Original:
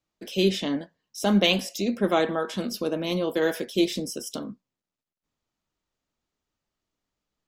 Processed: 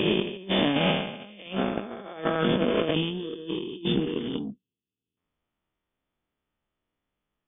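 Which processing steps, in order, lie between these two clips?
reverse spectral sustain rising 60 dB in 2.42 s; compressor with a negative ratio -25 dBFS, ratio -0.5; time-frequency box 2.94–5.17 s, 480–2500 Hz -22 dB; Chebyshev shaper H 5 -25 dB, 6 -32 dB, 7 -19 dB, 8 -37 dB, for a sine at -9.5 dBFS; brick-wall FIR low-pass 3.6 kHz

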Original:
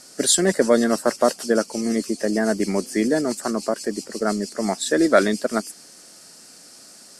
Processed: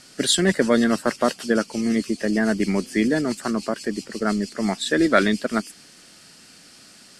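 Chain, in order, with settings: FFT filter 110 Hz 0 dB, 600 Hz -11 dB, 3.1 kHz 0 dB, 5.6 kHz -11 dB, 12 kHz -13 dB; trim +6.5 dB

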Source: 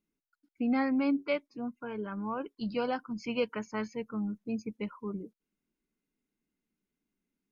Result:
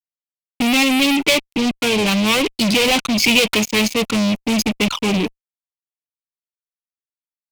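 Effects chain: fuzz box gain 47 dB, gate -52 dBFS; resonant high shelf 2 kHz +7 dB, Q 3; trim -2.5 dB

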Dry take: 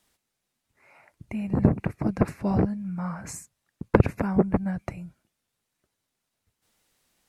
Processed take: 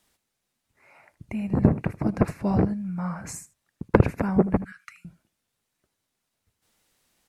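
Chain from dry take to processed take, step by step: 4.64–5.05 s: elliptic high-pass 1.3 kHz, stop band 40 dB; delay 78 ms -18.5 dB; trim +1 dB

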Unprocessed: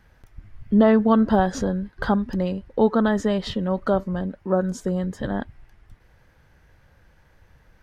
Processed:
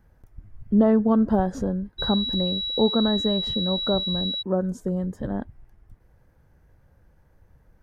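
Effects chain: peaking EQ 3.1 kHz -13.5 dB 2.7 oct; 1.98–4.41 s: whistle 3.9 kHz -25 dBFS; trim -1 dB

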